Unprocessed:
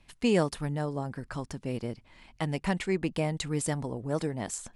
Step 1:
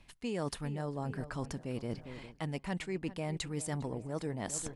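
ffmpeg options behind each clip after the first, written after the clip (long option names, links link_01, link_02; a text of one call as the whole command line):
ffmpeg -i in.wav -filter_complex "[0:a]asplit=2[link_01][link_02];[link_02]adelay=404,lowpass=frequency=2700:poles=1,volume=-18dB,asplit=2[link_03][link_04];[link_04]adelay=404,lowpass=frequency=2700:poles=1,volume=0.45,asplit=2[link_05][link_06];[link_06]adelay=404,lowpass=frequency=2700:poles=1,volume=0.45,asplit=2[link_07][link_08];[link_08]adelay=404,lowpass=frequency=2700:poles=1,volume=0.45[link_09];[link_01][link_03][link_05][link_07][link_09]amix=inputs=5:normalize=0,areverse,acompressor=threshold=-38dB:ratio=6,areverse,volume=4dB" out.wav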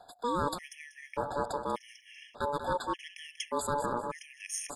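ffmpeg -i in.wav -af "aeval=exprs='val(0)*sin(2*PI*720*n/s)':channel_layout=same,aecho=1:1:190|380|570:0.335|0.0804|0.0193,afftfilt=real='re*gt(sin(2*PI*0.85*pts/sr)*(1-2*mod(floor(b*sr/1024/1700),2)),0)':imag='im*gt(sin(2*PI*0.85*pts/sr)*(1-2*mod(floor(b*sr/1024/1700),2)),0)':win_size=1024:overlap=0.75,volume=8dB" out.wav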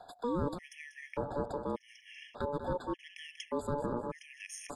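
ffmpeg -i in.wav -filter_complex "[0:a]highshelf=frequency=5100:gain=-9.5,acrossover=split=530[link_01][link_02];[link_02]acompressor=threshold=-45dB:ratio=5[link_03];[link_01][link_03]amix=inputs=2:normalize=0,volume=2.5dB" out.wav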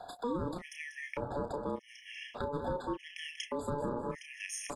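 ffmpeg -i in.wav -filter_complex "[0:a]asplit=2[link_01][link_02];[link_02]adelay=32,volume=-7.5dB[link_03];[link_01][link_03]amix=inputs=2:normalize=0,alimiter=level_in=6dB:limit=-24dB:level=0:latency=1:release=275,volume=-6dB,volume=4.5dB" out.wav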